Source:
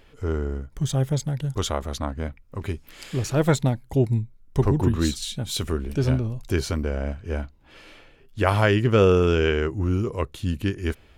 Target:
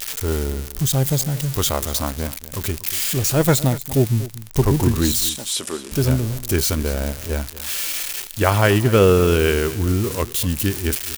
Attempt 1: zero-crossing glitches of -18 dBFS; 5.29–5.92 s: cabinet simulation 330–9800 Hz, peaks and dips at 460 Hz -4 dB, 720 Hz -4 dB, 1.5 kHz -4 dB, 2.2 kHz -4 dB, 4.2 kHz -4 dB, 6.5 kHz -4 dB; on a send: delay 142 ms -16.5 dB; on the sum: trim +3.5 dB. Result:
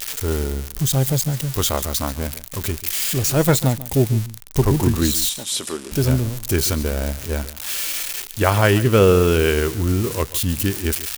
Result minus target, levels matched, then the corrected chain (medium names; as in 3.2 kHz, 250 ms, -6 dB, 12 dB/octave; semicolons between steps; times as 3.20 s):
echo 96 ms early
zero-crossing glitches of -18 dBFS; 5.29–5.92 s: cabinet simulation 330–9800 Hz, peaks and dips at 460 Hz -4 dB, 720 Hz -4 dB, 1.5 kHz -4 dB, 2.2 kHz -4 dB, 4.2 kHz -4 dB, 6.5 kHz -4 dB; on a send: delay 238 ms -16.5 dB; on the sum: trim +3.5 dB